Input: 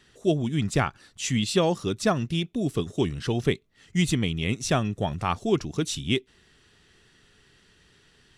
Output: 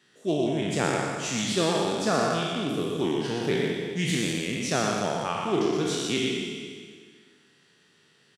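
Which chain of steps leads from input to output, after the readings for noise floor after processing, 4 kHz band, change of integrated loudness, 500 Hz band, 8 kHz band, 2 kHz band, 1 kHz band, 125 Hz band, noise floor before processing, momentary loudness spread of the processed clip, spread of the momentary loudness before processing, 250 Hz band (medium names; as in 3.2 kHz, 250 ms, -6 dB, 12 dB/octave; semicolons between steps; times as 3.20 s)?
-62 dBFS, +1.5 dB, 0.0 dB, +1.5 dB, +1.5 dB, +2.0 dB, +2.0 dB, -5.0 dB, -61 dBFS, 4 LU, 5 LU, -1.0 dB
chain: spectral sustain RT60 1.92 s; high-pass 140 Hz 24 dB/octave; on a send: delay 121 ms -5 dB; on the sum: loudspeaker Doppler distortion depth 0.12 ms; trim -6 dB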